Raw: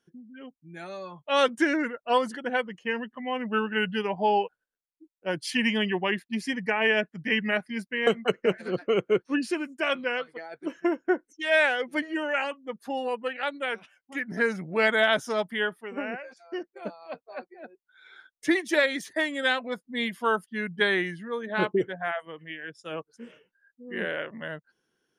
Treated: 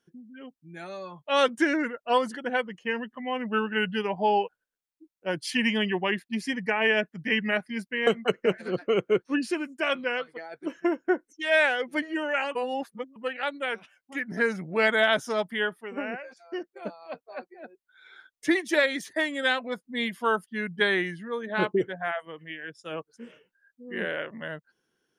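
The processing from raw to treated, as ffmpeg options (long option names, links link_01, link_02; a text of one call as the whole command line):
ffmpeg -i in.wav -filter_complex "[0:a]asplit=3[link_01][link_02][link_03];[link_01]atrim=end=12.552[link_04];[link_02]atrim=start=12.548:end=13.162,asetpts=PTS-STARTPTS,areverse[link_05];[link_03]atrim=start=13.158[link_06];[link_04][link_05]acrossfade=duration=0.004:curve1=hsin:curve2=hsin[link_07];[link_07][link_06]acrossfade=duration=0.004:curve1=hsin:curve2=hsin" out.wav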